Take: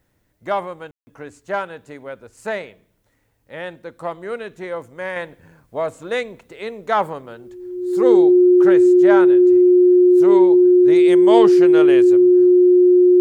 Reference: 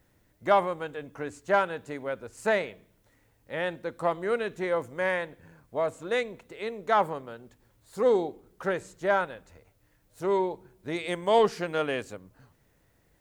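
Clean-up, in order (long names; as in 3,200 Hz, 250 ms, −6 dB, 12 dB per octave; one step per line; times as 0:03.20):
notch filter 360 Hz, Q 30
ambience match 0:00.91–0:01.07
level 0 dB, from 0:05.16 −5 dB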